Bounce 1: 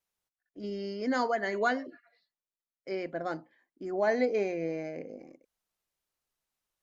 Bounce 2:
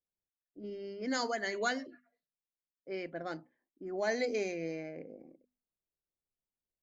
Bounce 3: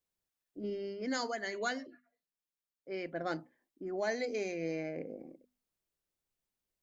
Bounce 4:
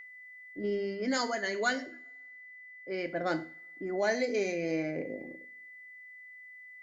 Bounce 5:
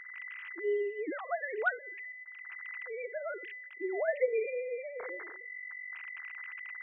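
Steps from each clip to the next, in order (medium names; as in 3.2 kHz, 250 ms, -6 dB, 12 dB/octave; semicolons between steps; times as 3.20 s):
hum notches 50/100/150/200/250 Hz; level-controlled noise filter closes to 540 Hz, open at -25 dBFS; FFT filter 250 Hz 0 dB, 980 Hz -4 dB, 6.8 kHz +12 dB; trim -3.5 dB
gain riding within 5 dB 0.5 s
wow and flutter 21 cents; whistle 2 kHz -49 dBFS; two-slope reverb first 0.39 s, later 1.7 s, from -28 dB, DRR 8.5 dB; trim +4.5 dB
formants replaced by sine waves; trim -2 dB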